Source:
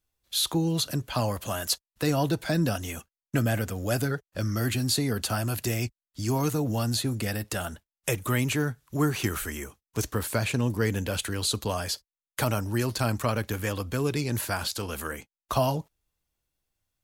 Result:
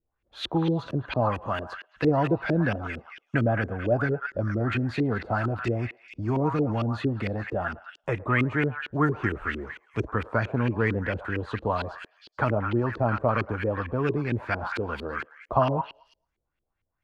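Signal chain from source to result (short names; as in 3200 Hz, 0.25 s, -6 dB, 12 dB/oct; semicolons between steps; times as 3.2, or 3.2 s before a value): delay with a stepping band-pass 0.109 s, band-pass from 1300 Hz, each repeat 0.7 oct, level -2 dB; LFO low-pass saw up 4.4 Hz 350–2700 Hz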